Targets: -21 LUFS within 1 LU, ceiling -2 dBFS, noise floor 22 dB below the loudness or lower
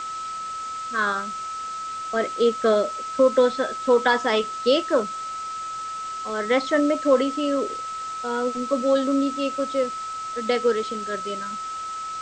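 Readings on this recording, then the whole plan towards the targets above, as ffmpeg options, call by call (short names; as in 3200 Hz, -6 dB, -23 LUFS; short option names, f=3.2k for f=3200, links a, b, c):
steady tone 1300 Hz; tone level -29 dBFS; noise floor -32 dBFS; noise floor target -46 dBFS; loudness -24.0 LUFS; peak -6.5 dBFS; loudness target -21.0 LUFS
-> -af "bandreject=f=1.3k:w=30"
-af "afftdn=nr=14:nf=-32"
-af "volume=3dB"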